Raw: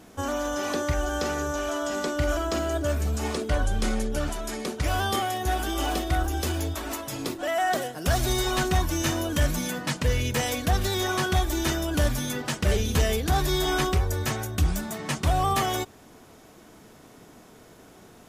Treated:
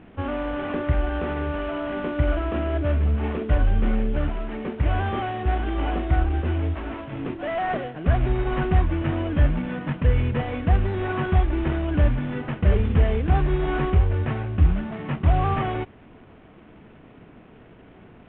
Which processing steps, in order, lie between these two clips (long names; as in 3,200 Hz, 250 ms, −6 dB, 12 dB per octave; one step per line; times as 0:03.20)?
variable-slope delta modulation 16 kbit/s
low-shelf EQ 330 Hz +8.5 dB
level −1.5 dB